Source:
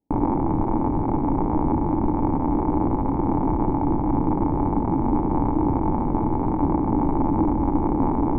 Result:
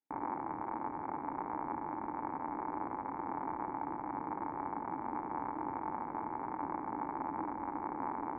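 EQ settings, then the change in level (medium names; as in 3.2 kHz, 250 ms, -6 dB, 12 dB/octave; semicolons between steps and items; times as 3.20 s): band-pass filter 1.7 kHz, Q 2.7; distance through air 270 m; +2.5 dB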